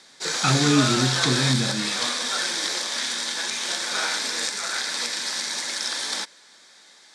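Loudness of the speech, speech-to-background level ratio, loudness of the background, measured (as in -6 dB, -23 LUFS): -24.0 LUFS, 0.0 dB, -24.0 LUFS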